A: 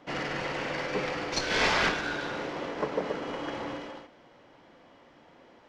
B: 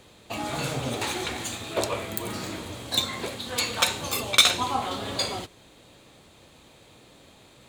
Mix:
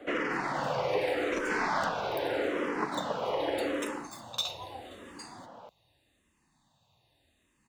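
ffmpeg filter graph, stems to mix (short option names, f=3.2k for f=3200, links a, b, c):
-filter_complex "[0:a]acrossover=split=250|1600[a][b][c];[a]acompressor=threshold=-49dB:ratio=4[d];[b]acompressor=threshold=-38dB:ratio=4[e];[c]acompressor=threshold=-41dB:ratio=4[f];[d][e][f]amix=inputs=3:normalize=0,equalizer=f=600:w=0.32:g=12,volume=0dB[g];[1:a]aecho=1:1:1.1:0.59,volume=-16dB[h];[g][h]amix=inputs=2:normalize=0,asplit=2[i][j];[j]afreqshift=-0.82[k];[i][k]amix=inputs=2:normalize=1"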